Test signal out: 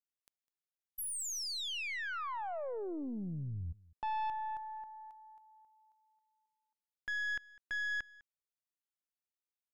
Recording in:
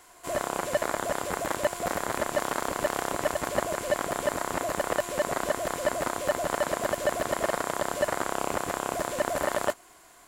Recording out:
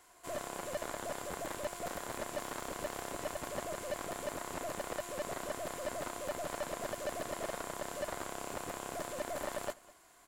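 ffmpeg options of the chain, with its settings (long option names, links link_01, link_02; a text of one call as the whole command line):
ffmpeg -i in.wav -af "aeval=exprs='0.266*(cos(1*acos(clip(val(0)/0.266,-1,1)))-cos(1*PI/2))+0.0211*(cos(8*acos(clip(val(0)/0.266,-1,1)))-cos(8*PI/2))':channel_layout=same,asoftclip=type=tanh:threshold=-22dB,aecho=1:1:203:0.0794,volume=-8dB" out.wav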